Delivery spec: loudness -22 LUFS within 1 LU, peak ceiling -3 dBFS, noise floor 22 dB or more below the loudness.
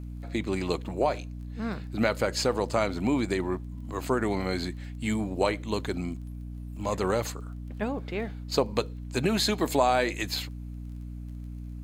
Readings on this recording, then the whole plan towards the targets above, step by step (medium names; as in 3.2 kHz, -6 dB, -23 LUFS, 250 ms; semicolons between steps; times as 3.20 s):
tick rate 19 per s; hum 60 Hz; highest harmonic 300 Hz; hum level -35 dBFS; loudness -29.0 LUFS; peak level -8.5 dBFS; loudness target -22.0 LUFS
-> de-click; hum notches 60/120/180/240/300 Hz; trim +7 dB; peak limiter -3 dBFS